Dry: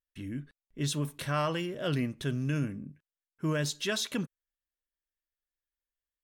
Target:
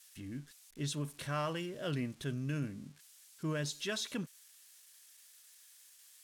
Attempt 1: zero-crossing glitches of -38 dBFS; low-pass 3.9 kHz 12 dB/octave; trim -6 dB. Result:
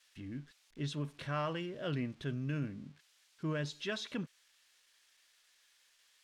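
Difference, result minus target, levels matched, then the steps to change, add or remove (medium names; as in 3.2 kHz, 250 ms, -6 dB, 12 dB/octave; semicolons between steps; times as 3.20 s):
8 kHz band -10.0 dB
change: low-pass 10 kHz 12 dB/octave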